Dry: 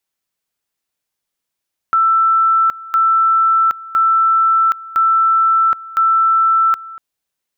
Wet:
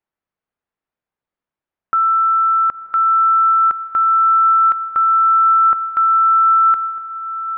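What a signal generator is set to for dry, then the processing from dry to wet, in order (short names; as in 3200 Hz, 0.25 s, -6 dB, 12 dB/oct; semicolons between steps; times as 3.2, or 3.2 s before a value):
two-level tone 1330 Hz -9.5 dBFS, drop 19.5 dB, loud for 0.77 s, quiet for 0.24 s, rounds 5
LPF 1600 Hz 12 dB/oct; on a send: diffused feedback echo 1.006 s, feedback 52%, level -14 dB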